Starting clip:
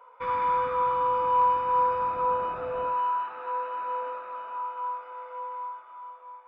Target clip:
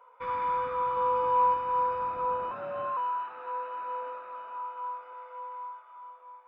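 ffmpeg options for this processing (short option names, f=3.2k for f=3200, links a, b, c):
-filter_complex "[0:a]asettb=1/sr,asplit=3[a][b][c];[a]atrim=end=0.954[d];[b]atrim=start=0.95:end=1.54,asetpts=PTS-STARTPTS,afade=t=in:d=0.004:c=qsin,afade=t=out:st=0.586:d=0.004:c=qsin,asplit=2[e][f];[f]adelay=16,volume=-3.5dB[g];[e][g]amix=inputs=2:normalize=0,atrim=end_sample=26019[h];[c]atrim=start=1.536[i];[d][h]acrossfade=d=0.004:c1=hsin:c2=qsin[j];[j][i]acrossfade=d=0.004:c1=qsin:c2=hsin,asettb=1/sr,asplit=3[k][l][m];[k]atrim=end=2.514[n];[l]atrim=start=2.51:end=2.97,asetpts=PTS-STARTPTS,afade=t=in:d=0.004:c=qsin,afade=t=out:st=0.456:d=0.004:c=qsin,afreqshift=66[o];[m]atrim=start=2.966[p];[n][o]acrossfade=d=0.004:c1=hsin:c2=qsin[q];[q][p]acrossfade=d=0.004:c1=qsin:c2=hsin,asettb=1/sr,asplit=3[r][s][t];[r]atrim=end=5.134[u];[s]atrim=start=5.13:end=5.96,asetpts=PTS-STARTPTS,afade=t=in:d=0.004:c=qsin,afade=t=out:st=0.826:d=0.004:c=qsin,highpass=430[v];[t]atrim=start=5.956[w];[u][v]acrossfade=d=0.004:c1=hsin:c2=qsin[x];[x][w]acrossfade=d=0.004:c1=qsin:c2=hsin,volume=-4dB"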